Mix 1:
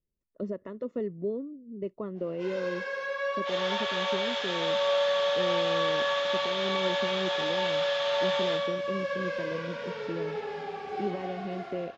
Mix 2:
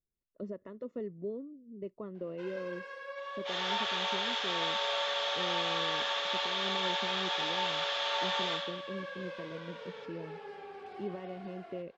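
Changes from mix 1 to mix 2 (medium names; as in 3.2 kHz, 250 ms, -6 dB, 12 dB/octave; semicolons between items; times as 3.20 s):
speech -6.5 dB; first sound: send off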